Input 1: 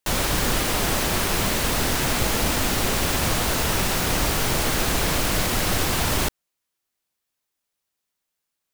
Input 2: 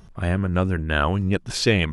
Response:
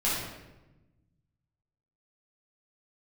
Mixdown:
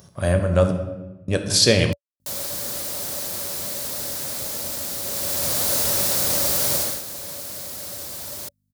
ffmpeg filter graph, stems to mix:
-filter_complex "[0:a]aeval=exprs='val(0)+0.00398*(sin(2*PI*50*n/s)+sin(2*PI*2*50*n/s)/2+sin(2*PI*3*50*n/s)/3+sin(2*PI*4*50*n/s)/4+sin(2*PI*5*50*n/s)/5)':c=same,adelay=2200,volume=-6.5dB,afade=t=in:st=5.02:d=0.71:silence=0.398107,afade=t=out:st=6.75:d=0.27:silence=0.237137[a];[1:a]volume=-2dB,asplit=3[b][c][d];[b]atrim=end=0.71,asetpts=PTS-STARTPTS,afade=t=out:st=0.706:d=0.004:c=hsin[e];[c]atrim=start=0.71:end=1.28,asetpts=PTS-STARTPTS,volume=0[f];[d]atrim=start=1.28,asetpts=PTS-STARTPTS,afade=t=in:d=0.004:c=hsin[g];[e][f][g]concat=n=3:v=0:a=1,asplit=2[h][i];[i]volume=-13.5dB[j];[2:a]atrim=start_sample=2205[k];[j][k]afir=irnorm=-1:irlink=0[l];[a][h][l]amix=inputs=3:normalize=0,highpass=f=72:w=0.5412,highpass=f=72:w=1.3066,equalizer=f=570:w=7.6:g=14,aexciter=amount=4.8:drive=1.2:freq=3.9k"

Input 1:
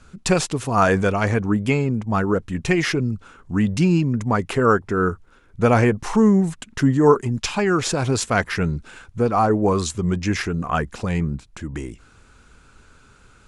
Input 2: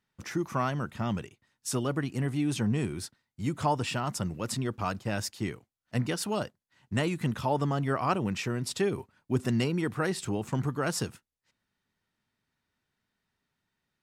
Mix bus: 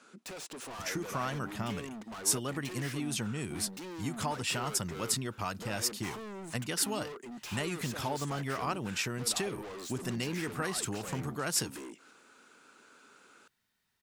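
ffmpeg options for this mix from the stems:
-filter_complex "[0:a]highpass=f=250:w=0.5412,highpass=f=250:w=1.3066,acompressor=threshold=-24dB:ratio=6,asoftclip=type=hard:threshold=-37.5dB,volume=-4.5dB[a];[1:a]highshelf=f=3.1k:g=-10.5,acompressor=threshold=-31dB:ratio=4,crystalizer=i=8:c=0,adelay=600,volume=-3dB[b];[a][b]amix=inputs=2:normalize=0"

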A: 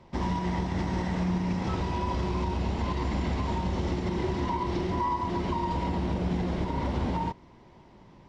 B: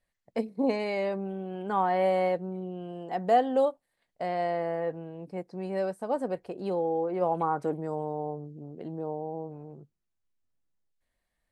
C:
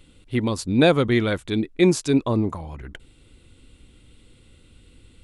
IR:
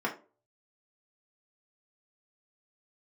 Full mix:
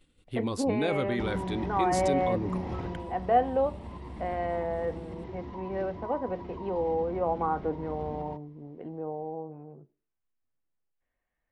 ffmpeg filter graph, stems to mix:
-filter_complex "[0:a]lowpass=f=1.9k:p=1,bandreject=f=1.5k:w=16,adelay=1050,volume=-5dB,afade=t=out:st=2.82:d=0.23:silence=0.446684[a];[1:a]lowpass=f=2.8k:w=0.5412,lowpass=f=2.8k:w=1.3066,volume=-3dB,asplit=2[b][c];[c]volume=-18dB[d];[2:a]agate=range=-9dB:threshold=-50dB:ratio=16:detection=peak,volume=-7.5dB,asplit=2[e][f];[f]volume=-21dB[g];[a][e]amix=inputs=2:normalize=0,alimiter=limit=-24dB:level=0:latency=1:release=10,volume=0dB[h];[3:a]atrim=start_sample=2205[i];[d][g]amix=inputs=2:normalize=0[j];[j][i]afir=irnorm=-1:irlink=0[k];[b][h][k]amix=inputs=3:normalize=0"

